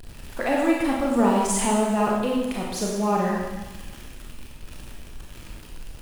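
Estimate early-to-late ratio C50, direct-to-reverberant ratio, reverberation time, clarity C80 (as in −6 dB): 0.0 dB, −3.0 dB, 1.2 s, 3.0 dB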